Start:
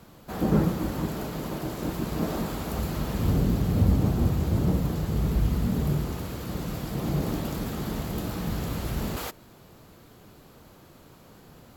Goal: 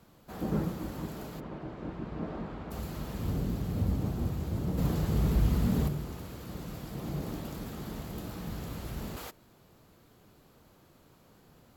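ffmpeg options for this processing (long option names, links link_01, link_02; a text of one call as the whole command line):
ffmpeg -i in.wav -filter_complex "[0:a]asplit=3[link_01][link_02][link_03];[link_01]afade=type=out:start_time=1.39:duration=0.02[link_04];[link_02]lowpass=2300,afade=type=in:start_time=1.39:duration=0.02,afade=type=out:start_time=2.7:duration=0.02[link_05];[link_03]afade=type=in:start_time=2.7:duration=0.02[link_06];[link_04][link_05][link_06]amix=inputs=3:normalize=0,asplit=3[link_07][link_08][link_09];[link_07]afade=type=out:start_time=4.77:duration=0.02[link_10];[link_08]acontrast=89,afade=type=in:start_time=4.77:duration=0.02,afade=type=out:start_time=5.87:duration=0.02[link_11];[link_09]afade=type=in:start_time=5.87:duration=0.02[link_12];[link_10][link_11][link_12]amix=inputs=3:normalize=0,volume=-8.5dB" out.wav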